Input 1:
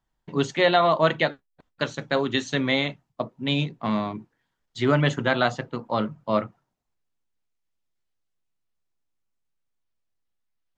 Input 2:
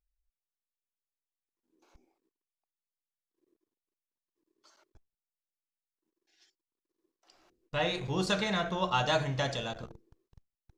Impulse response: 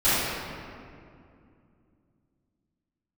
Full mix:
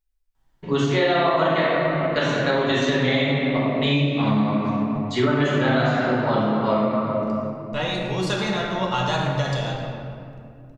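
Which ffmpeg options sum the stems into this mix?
-filter_complex "[0:a]adelay=350,volume=0.841,asplit=2[s0][s1];[s1]volume=0.473[s2];[1:a]volume=1.33,asplit=2[s3][s4];[s4]volume=0.15[s5];[2:a]atrim=start_sample=2205[s6];[s2][s5]amix=inputs=2:normalize=0[s7];[s7][s6]afir=irnorm=-1:irlink=0[s8];[s0][s3][s8]amix=inputs=3:normalize=0,acompressor=threshold=0.126:ratio=4"

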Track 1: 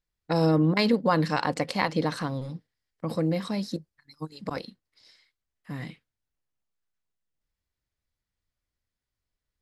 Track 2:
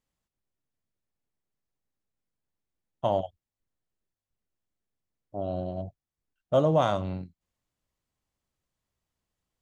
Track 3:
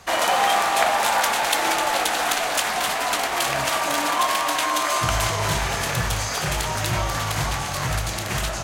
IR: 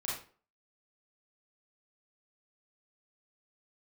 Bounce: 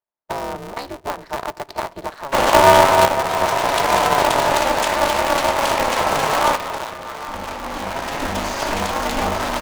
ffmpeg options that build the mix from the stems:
-filter_complex "[0:a]highpass=580,equalizer=f=2600:t=o:w=0.97:g=-9.5,acompressor=threshold=0.0251:ratio=3,volume=1.26,asplit=2[s0][s1];[s1]volume=0.0794[s2];[1:a]highpass=f=880:w=0.5412,highpass=f=880:w=1.3066,acrusher=bits=3:mix=0:aa=0.000001,volume=0.501,asplit=2[s3][s4];[2:a]adelay=2250,volume=0.891,asplit=2[s5][s6];[s6]volume=0.141[s7];[s4]apad=whole_len=480160[s8];[s5][s8]sidechaincompress=threshold=0.00398:ratio=8:attack=25:release=1110[s9];[3:a]atrim=start_sample=2205[s10];[s2][s7]amix=inputs=2:normalize=0[s11];[s11][s10]afir=irnorm=-1:irlink=0[s12];[s0][s3][s9][s12]amix=inputs=4:normalize=0,equalizer=f=780:w=3.3:g=12.5,adynamicsmooth=sensitivity=6:basefreq=1900,aeval=exprs='val(0)*sgn(sin(2*PI*140*n/s))':c=same"

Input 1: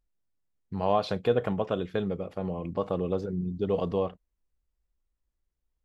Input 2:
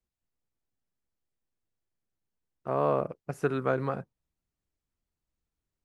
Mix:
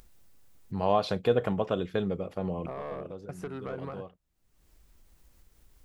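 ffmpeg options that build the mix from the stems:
-filter_complex "[0:a]highshelf=f=8200:g=6.5,volume=1[s0];[1:a]asoftclip=type=tanh:threshold=0.0794,acompressor=threshold=0.0224:ratio=6,volume=0.794,asplit=2[s1][s2];[s2]apad=whole_len=257699[s3];[s0][s3]sidechaincompress=threshold=0.00398:ratio=8:attack=7:release=1300[s4];[s4][s1]amix=inputs=2:normalize=0,acompressor=mode=upward:threshold=0.01:ratio=2.5"

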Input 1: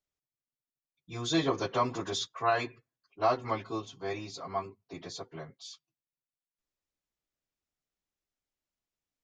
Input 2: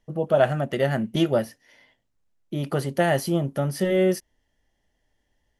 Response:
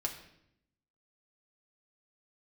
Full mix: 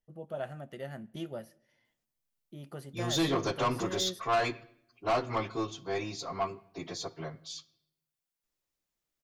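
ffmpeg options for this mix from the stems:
-filter_complex "[0:a]aeval=exprs='0.188*(cos(1*acos(clip(val(0)/0.188,-1,1)))-cos(1*PI/2))+0.00299*(cos(8*acos(clip(val(0)/0.188,-1,1)))-cos(8*PI/2))':c=same,asoftclip=type=tanh:threshold=0.0501,adelay=1850,volume=1.12,asplit=2[s0][s1];[s1]volume=0.266[s2];[1:a]volume=0.106,asplit=2[s3][s4];[s4]volume=0.15[s5];[2:a]atrim=start_sample=2205[s6];[s2][s5]amix=inputs=2:normalize=0[s7];[s7][s6]afir=irnorm=-1:irlink=0[s8];[s0][s3][s8]amix=inputs=3:normalize=0,highshelf=f=8900:g=5"

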